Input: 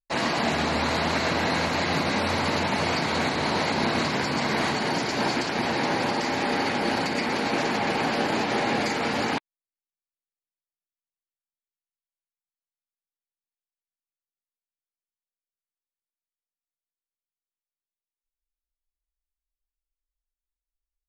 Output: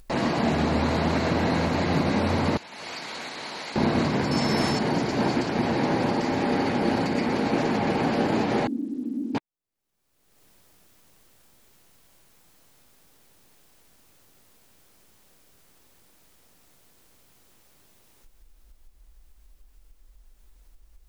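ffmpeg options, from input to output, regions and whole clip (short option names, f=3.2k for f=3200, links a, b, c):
-filter_complex "[0:a]asettb=1/sr,asplit=3[a][b][c];[a]atrim=end=2.574[d];[b]atrim=start=2.57:end=3.76,asetpts=PTS-STARTPTS,afade=t=in:d=0.004:c=qsin,afade=t=out:st=1.186:d=0.004:c=qsin,lowpass=f=3.1k:p=1,aderivative[e];[c]atrim=start=3.756[f];[d][e]acrossfade=d=0.004:c1=hsin:c2=qsin[g];[g][f]acrossfade=d=0.004:c1=qsin:c2=hsin,asettb=1/sr,asplit=3[h][i][j];[h]atrim=end=4.314[k];[i]atrim=start=4.31:end=4.79,asetpts=PTS-STARTPTS,afade=t=in:d=0.004:c=qsin,afade=t=out:st=0.476:d=0.004:c=qsin,highshelf=f=6k:g=11.5,aeval=exprs='val(0)+0.0398*sin(2*PI*5300*n/s)':c=same[l];[j]atrim=start=4.786[m];[k][l]acrossfade=d=0.004:c1=hsin:c2=qsin[n];[n][m]acrossfade=d=0.004:c1=qsin:c2=hsin,asettb=1/sr,asplit=3[o][p][q];[o]atrim=end=8.674[r];[p]atrim=start=8.67:end=9.35,asetpts=PTS-STARTPTS,afade=t=in:d=0.004:c=qsin,afade=t=out:st=0.676:d=0.004:c=qsin,asuperpass=centerf=270:order=4:qfactor=3.6,acrusher=bits=8:mix=0:aa=0.5[s];[q]atrim=start=9.346[t];[r][s]acrossfade=d=0.004:c1=hsin:c2=qsin[u];[u][t]acrossfade=d=0.004:c1=qsin:c2=hsin,tiltshelf=f=680:g=6,acompressor=mode=upward:threshold=-26dB:ratio=2.5"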